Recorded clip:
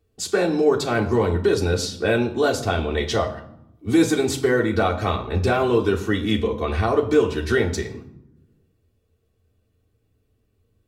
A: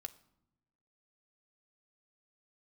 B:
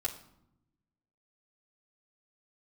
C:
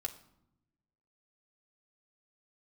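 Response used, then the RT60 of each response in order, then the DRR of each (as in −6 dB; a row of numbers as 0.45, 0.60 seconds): B; non-exponential decay, 0.75 s, 0.80 s; 6.5, −5.0, 1.0 decibels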